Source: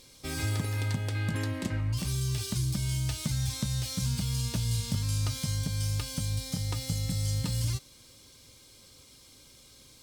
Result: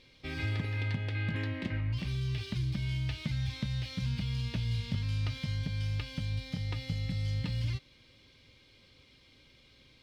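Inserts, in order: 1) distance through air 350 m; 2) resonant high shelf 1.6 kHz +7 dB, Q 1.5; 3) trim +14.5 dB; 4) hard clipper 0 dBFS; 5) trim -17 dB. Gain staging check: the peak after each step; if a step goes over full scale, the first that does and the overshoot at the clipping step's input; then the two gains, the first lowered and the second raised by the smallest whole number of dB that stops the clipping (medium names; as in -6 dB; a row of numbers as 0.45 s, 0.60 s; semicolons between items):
-19.0 dBFS, -19.0 dBFS, -4.5 dBFS, -4.5 dBFS, -21.5 dBFS; nothing clips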